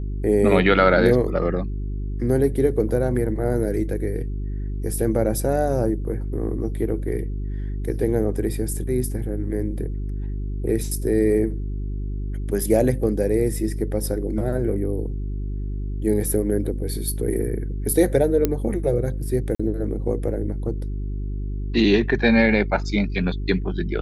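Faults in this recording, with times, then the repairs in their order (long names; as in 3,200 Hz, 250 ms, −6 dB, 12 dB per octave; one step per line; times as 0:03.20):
mains hum 50 Hz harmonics 8 −27 dBFS
0:18.45: click −6 dBFS
0:19.55–0:19.59: drop-out 45 ms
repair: click removal
hum removal 50 Hz, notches 8
repair the gap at 0:19.55, 45 ms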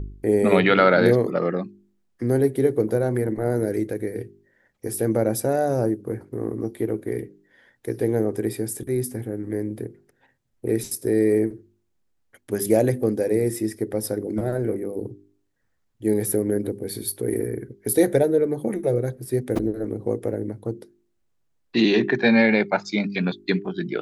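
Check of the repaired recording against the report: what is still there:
none of them is left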